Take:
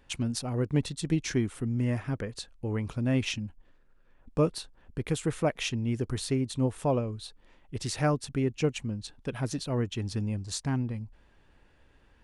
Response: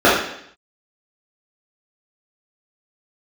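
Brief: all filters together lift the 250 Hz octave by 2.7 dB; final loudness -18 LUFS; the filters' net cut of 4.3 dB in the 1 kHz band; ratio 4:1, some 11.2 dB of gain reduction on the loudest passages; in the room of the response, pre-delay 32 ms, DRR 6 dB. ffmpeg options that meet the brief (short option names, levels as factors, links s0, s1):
-filter_complex "[0:a]equalizer=f=250:t=o:g=3.5,equalizer=f=1000:t=o:g=-6.5,acompressor=threshold=0.0224:ratio=4,asplit=2[s0][s1];[1:a]atrim=start_sample=2205,adelay=32[s2];[s1][s2]afir=irnorm=-1:irlink=0,volume=0.0178[s3];[s0][s3]amix=inputs=2:normalize=0,volume=8.41"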